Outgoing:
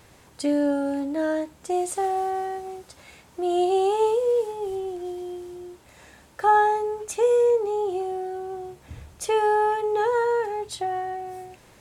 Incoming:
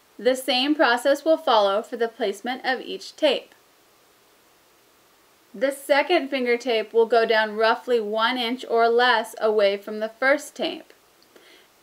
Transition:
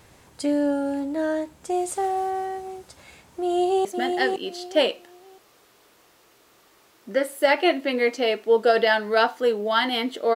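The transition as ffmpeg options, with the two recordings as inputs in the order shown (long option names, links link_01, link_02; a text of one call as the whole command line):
ffmpeg -i cue0.wav -i cue1.wav -filter_complex "[0:a]apad=whole_dur=10.35,atrim=end=10.35,atrim=end=3.852[link_01];[1:a]atrim=start=2.318:end=8.82[link_02];[link_01][link_02]acrossfade=duration=0.004:curve1=hsin:curve2=hsin,asplit=2[link_03][link_04];[link_04]afade=type=in:start_time=3.42:duration=0.01,afade=type=out:start_time=3.85:duration=0.01,aecho=0:1:510|1020|1530:0.595662|0.148916|0.0372289[link_05];[link_03][link_05]amix=inputs=2:normalize=0" out.wav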